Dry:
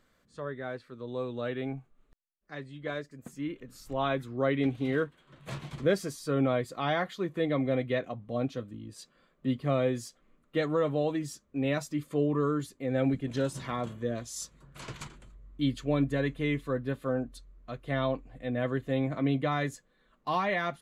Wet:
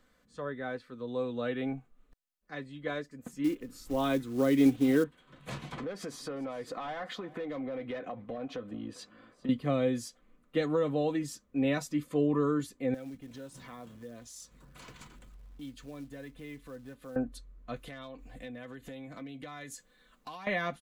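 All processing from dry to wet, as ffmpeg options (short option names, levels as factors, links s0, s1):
-filter_complex "[0:a]asettb=1/sr,asplit=3[s0][s1][s2];[s0]atrim=end=3.444[s3];[s1]atrim=start=3.44:end=5.04,asetpts=PTS-STARTPTS,afade=t=in:d=0.004:c=qsin,afade=t=out:st=1.596:d=0.004:c=qsin,equalizer=f=330:w=2.2:g=7.5,acrusher=bits=6:mode=log:mix=0:aa=0.000001[s4];[s2]atrim=start=5.036[s5];[s3][s4]acrossfade=d=0.004:c1=hsin:c2=qsin[s6];[s6][s5]acrossfade=d=0.004:c1=qsin:c2=hsin,asettb=1/sr,asplit=3[s7][s8][s9];[s7]atrim=end=5.724[s10];[s8]atrim=start=5.72:end=9.49,asetpts=PTS-STARTPTS,afade=t=in:d=0.004:c=qsin,afade=t=out:st=3.766:d=0.004:c=qsin,asplit=2[s11][s12];[s12]highpass=f=720:p=1,volume=7.94,asoftclip=type=tanh:threshold=0.2[s13];[s11][s13]amix=inputs=2:normalize=0,lowpass=f=1200:p=1,volume=0.501,acompressor=threshold=0.0178:ratio=12:attack=3.2:release=140:knee=1:detection=peak,aecho=1:1:400:0.0944,atrim=end_sample=166257[s14];[s9]atrim=start=9.486[s15];[s10][s14]acrossfade=d=0.004:c1=hsin:c2=qsin[s16];[s16][s15]acrossfade=d=0.004:c1=qsin:c2=hsin,asettb=1/sr,asplit=3[s17][s18][s19];[s17]atrim=end=12.944[s20];[s18]atrim=start=12.94:end=17.16,asetpts=PTS-STARTPTS,afade=t=in:d=0.004:c=qsin,afade=t=out:st=4.216:d=0.004:c=qsin,acompressor=threshold=0.00316:ratio=2.5:attack=3.2:release=140:knee=1:detection=peak,acrusher=bits=5:mode=log:mix=0:aa=0.000001[s21];[s19]atrim=start=17.156[s22];[s20][s21]acrossfade=d=0.004:c1=hsin:c2=qsin[s23];[s23][s22]acrossfade=d=0.004:c1=qsin:c2=hsin,asettb=1/sr,asplit=3[s24][s25][s26];[s24]atrim=end=17.764[s27];[s25]atrim=start=17.76:end=20.47,asetpts=PTS-STARTPTS,afade=t=in:d=0.004:c=qsin,afade=t=out:st=2.706:d=0.004:c=qsin,highshelf=f=2600:g=12,acompressor=threshold=0.01:ratio=16:attack=3.2:release=140:knee=1:detection=peak,volume=63.1,asoftclip=hard,volume=0.0158[s28];[s26]atrim=start=20.466[s29];[s27][s28]acrossfade=d=0.004:c1=hsin:c2=qsin[s30];[s30][s29]acrossfade=d=0.004:c1=qsin:c2=hsin,aecho=1:1:4:0.35,acrossover=split=400|3000[s31][s32][s33];[s32]acompressor=threshold=0.0316:ratio=6[s34];[s31][s34][s33]amix=inputs=3:normalize=0"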